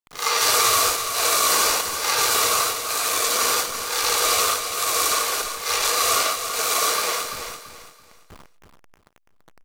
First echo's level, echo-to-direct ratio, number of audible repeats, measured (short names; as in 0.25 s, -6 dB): -8.0 dB, -7.5 dB, 3